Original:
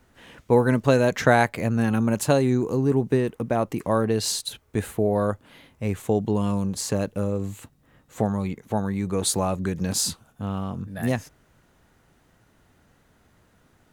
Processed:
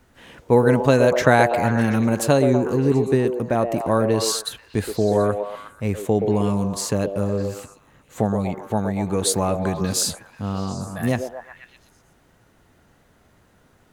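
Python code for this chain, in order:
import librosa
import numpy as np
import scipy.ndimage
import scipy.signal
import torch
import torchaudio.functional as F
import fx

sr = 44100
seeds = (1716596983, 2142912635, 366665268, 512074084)

y = fx.echo_stepped(x, sr, ms=122, hz=480.0, octaves=0.7, feedback_pct=70, wet_db=-3)
y = y * 10.0 ** (2.5 / 20.0)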